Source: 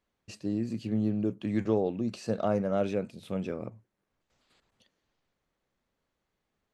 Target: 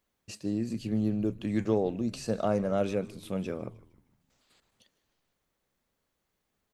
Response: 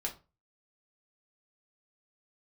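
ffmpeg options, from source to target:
-filter_complex "[0:a]highshelf=frequency=7000:gain=11,asplit=2[link_01][link_02];[link_02]asplit=4[link_03][link_04][link_05][link_06];[link_03]adelay=153,afreqshift=-95,volume=-20dB[link_07];[link_04]adelay=306,afreqshift=-190,volume=-26.4dB[link_08];[link_05]adelay=459,afreqshift=-285,volume=-32.8dB[link_09];[link_06]adelay=612,afreqshift=-380,volume=-39.1dB[link_10];[link_07][link_08][link_09][link_10]amix=inputs=4:normalize=0[link_11];[link_01][link_11]amix=inputs=2:normalize=0"

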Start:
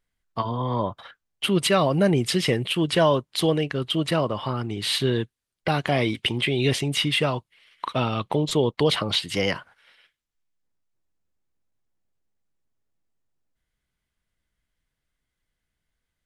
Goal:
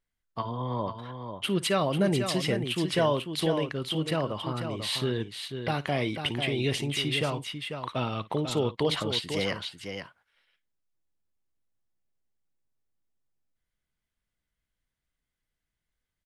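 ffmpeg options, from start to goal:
ffmpeg -i in.wav -af "aecho=1:1:56|494:0.112|0.422,volume=-6dB" out.wav

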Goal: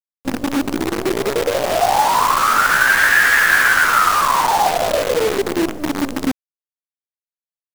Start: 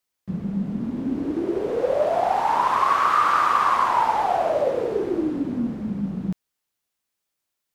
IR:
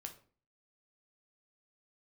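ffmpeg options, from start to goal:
-af "asetrate=62367,aresample=44100,atempo=0.707107,acrusher=bits=5:dc=4:mix=0:aa=0.000001,volume=6dB"

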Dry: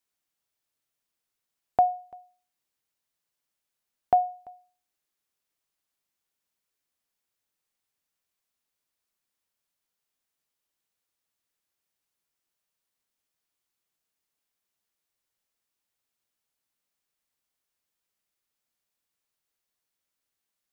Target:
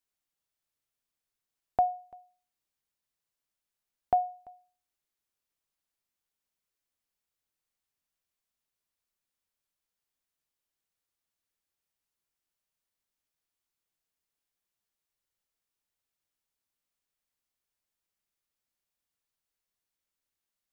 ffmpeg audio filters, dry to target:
ffmpeg -i in.wav -af "lowshelf=frequency=80:gain=8,volume=-4.5dB" out.wav

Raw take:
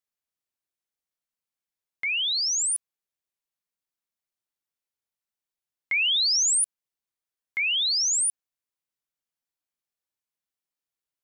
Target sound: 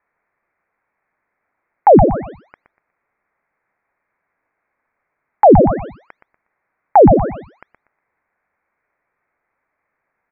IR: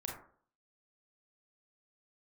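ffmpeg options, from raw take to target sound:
-filter_complex "[0:a]highpass=frequency=810:width=0.5412,highpass=frequency=810:width=1.3066,asplit=2[link_01][link_02];[link_02]aecho=0:1:131|262|393:0.282|0.0817|0.0237[link_03];[link_01][link_03]amix=inputs=2:normalize=0,lowpass=frequency=2500:width_type=q:width=0.5098,lowpass=frequency=2500:width_type=q:width=0.6013,lowpass=frequency=2500:width_type=q:width=0.9,lowpass=frequency=2500:width_type=q:width=2.563,afreqshift=-2900,asetrate=48000,aresample=44100,alimiter=level_in=28.5dB:limit=-1dB:release=50:level=0:latency=1,volume=-1dB"

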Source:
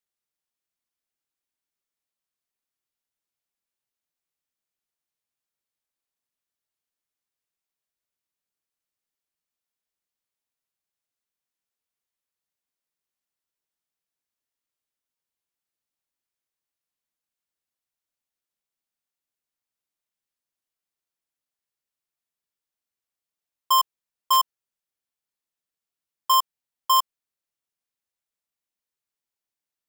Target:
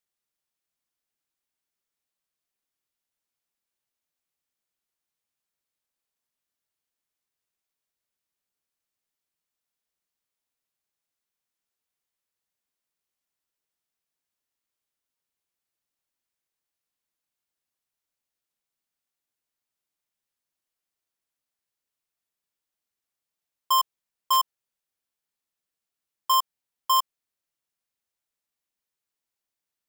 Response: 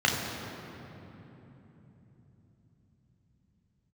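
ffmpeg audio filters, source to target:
-af "alimiter=limit=-20.5dB:level=0:latency=1,volume=1.5dB"

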